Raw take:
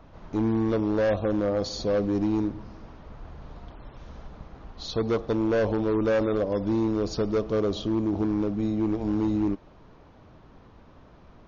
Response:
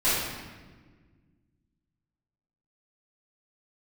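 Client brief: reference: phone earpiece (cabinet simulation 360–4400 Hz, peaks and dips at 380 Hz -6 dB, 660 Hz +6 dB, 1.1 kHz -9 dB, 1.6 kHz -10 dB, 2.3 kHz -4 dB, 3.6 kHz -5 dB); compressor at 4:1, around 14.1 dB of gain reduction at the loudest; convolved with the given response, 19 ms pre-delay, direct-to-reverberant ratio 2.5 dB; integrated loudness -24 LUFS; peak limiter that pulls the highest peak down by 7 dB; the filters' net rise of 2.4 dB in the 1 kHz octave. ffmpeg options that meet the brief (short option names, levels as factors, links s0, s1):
-filter_complex "[0:a]equalizer=f=1000:t=o:g=6,acompressor=threshold=0.0126:ratio=4,alimiter=level_in=2.82:limit=0.0631:level=0:latency=1,volume=0.355,asplit=2[s0][s1];[1:a]atrim=start_sample=2205,adelay=19[s2];[s1][s2]afir=irnorm=-1:irlink=0,volume=0.141[s3];[s0][s3]amix=inputs=2:normalize=0,highpass=360,equalizer=f=380:t=q:w=4:g=-6,equalizer=f=660:t=q:w=4:g=6,equalizer=f=1100:t=q:w=4:g=-9,equalizer=f=1600:t=q:w=4:g=-10,equalizer=f=2300:t=q:w=4:g=-4,equalizer=f=3600:t=q:w=4:g=-5,lowpass=f=4400:w=0.5412,lowpass=f=4400:w=1.3066,volume=10.6"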